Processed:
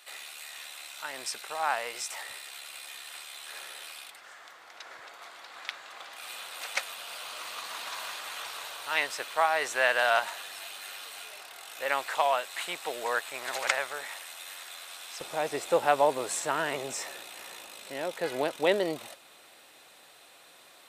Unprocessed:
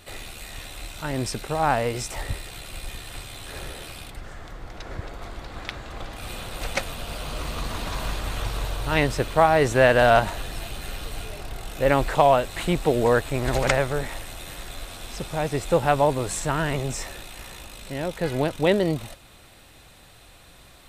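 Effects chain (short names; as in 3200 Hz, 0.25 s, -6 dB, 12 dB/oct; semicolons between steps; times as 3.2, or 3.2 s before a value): HPF 990 Hz 12 dB/oct, from 15.21 s 420 Hz; gain -2.5 dB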